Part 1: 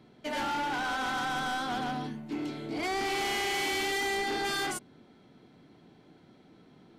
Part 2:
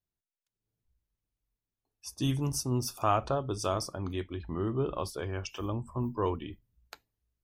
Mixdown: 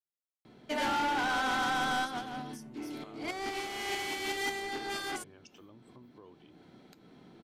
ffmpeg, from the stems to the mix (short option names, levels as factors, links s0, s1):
-filter_complex "[0:a]bandreject=f=50:t=h:w=6,bandreject=f=100:t=h:w=6,bandreject=f=150:t=h:w=6,adelay=450,volume=1.19[s0];[1:a]highpass=220,equalizer=f=1000:t=o:w=2.8:g=-8.5,acompressor=threshold=0.00631:ratio=4,volume=0.376,asplit=2[s1][s2];[s2]apad=whole_len=328008[s3];[s0][s3]sidechaincompress=threshold=0.00126:ratio=8:attack=8.4:release=258[s4];[s4][s1]amix=inputs=2:normalize=0"